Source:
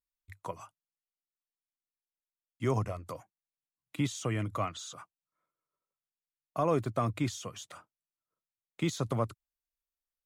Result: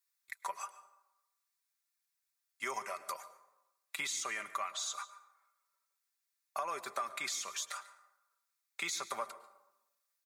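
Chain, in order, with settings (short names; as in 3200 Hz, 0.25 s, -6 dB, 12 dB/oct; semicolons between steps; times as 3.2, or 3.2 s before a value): HPF 1300 Hz 12 dB/oct; bell 3000 Hz -9.5 dB 0.31 oct; comb 5.1 ms, depth 53%; compressor, threshold -45 dBFS, peak gain reduction 12.5 dB; echo 0.143 s -20.5 dB; plate-style reverb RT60 0.95 s, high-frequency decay 0.55×, pre-delay 95 ms, DRR 15 dB; gain +10 dB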